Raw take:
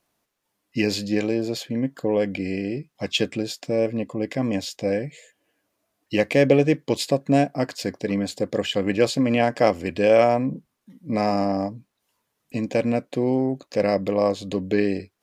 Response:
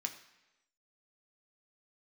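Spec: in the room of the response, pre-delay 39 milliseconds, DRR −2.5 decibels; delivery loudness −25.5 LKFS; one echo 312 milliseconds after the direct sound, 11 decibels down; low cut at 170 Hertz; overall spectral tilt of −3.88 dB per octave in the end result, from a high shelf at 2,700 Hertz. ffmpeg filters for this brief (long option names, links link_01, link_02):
-filter_complex "[0:a]highpass=170,highshelf=frequency=2700:gain=6.5,aecho=1:1:312:0.282,asplit=2[link_01][link_02];[1:a]atrim=start_sample=2205,adelay=39[link_03];[link_02][link_03]afir=irnorm=-1:irlink=0,volume=2.5dB[link_04];[link_01][link_04]amix=inputs=2:normalize=0,volume=-6dB"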